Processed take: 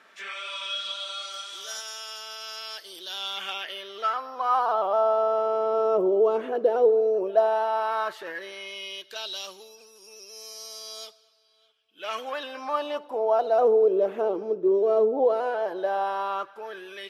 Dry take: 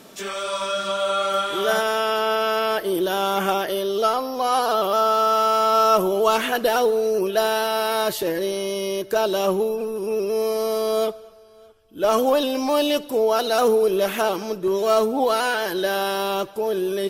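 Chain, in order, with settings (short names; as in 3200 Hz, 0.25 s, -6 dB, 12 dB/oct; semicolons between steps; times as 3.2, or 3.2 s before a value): LFO band-pass sine 0.12 Hz 420–6100 Hz; gain +1.5 dB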